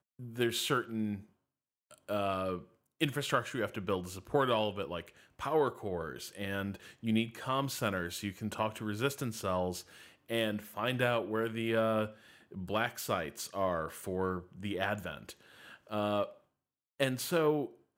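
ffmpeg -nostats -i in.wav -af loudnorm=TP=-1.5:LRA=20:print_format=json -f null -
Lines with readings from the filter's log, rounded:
"input_i" : "-34.5",
"input_tp" : "-14.0",
"input_lra" : "2.8",
"input_thresh" : "-45.1",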